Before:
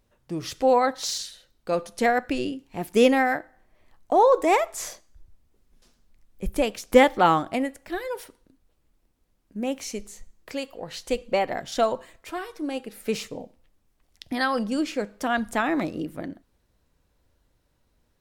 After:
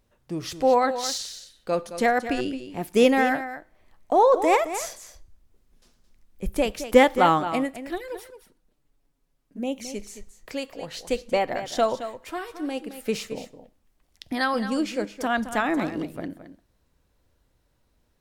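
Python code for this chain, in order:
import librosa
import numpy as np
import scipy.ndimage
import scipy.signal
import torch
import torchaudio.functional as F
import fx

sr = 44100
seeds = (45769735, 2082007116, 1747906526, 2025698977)

y = fx.env_flanger(x, sr, rest_ms=7.5, full_db=-25.5, at=(7.95, 9.94), fade=0.02)
y = y + 10.0 ** (-11.5 / 20.0) * np.pad(y, (int(218 * sr / 1000.0), 0))[:len(y)]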